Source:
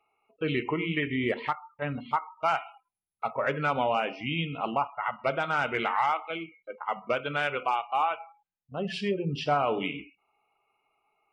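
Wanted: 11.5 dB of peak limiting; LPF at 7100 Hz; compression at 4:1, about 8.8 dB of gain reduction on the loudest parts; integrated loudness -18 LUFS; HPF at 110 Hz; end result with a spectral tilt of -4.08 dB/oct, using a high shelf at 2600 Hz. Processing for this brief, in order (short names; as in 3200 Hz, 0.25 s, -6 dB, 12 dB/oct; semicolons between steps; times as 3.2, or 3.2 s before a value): HPF 110 Hz; LPF 7100 Hz; high shelf 2600 Hz -5.5 dB; compressor 4:1, threshold -33 dBFS; gain +24.5 dB; limiter -7.5 dBFS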